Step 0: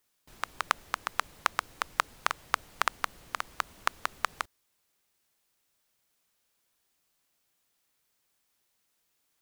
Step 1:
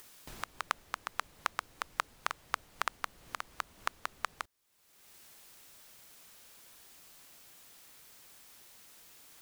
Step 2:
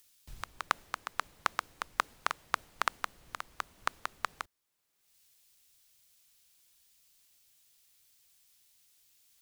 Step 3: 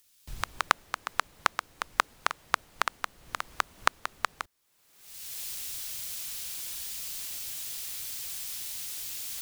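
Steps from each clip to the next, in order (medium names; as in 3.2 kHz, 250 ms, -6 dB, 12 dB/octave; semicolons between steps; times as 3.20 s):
upward compressor, threshold -30 dBFS; trim -6 dB
three bands expanded up and down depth 70%
recorder AGC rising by 26 dB/s; trim -1 dB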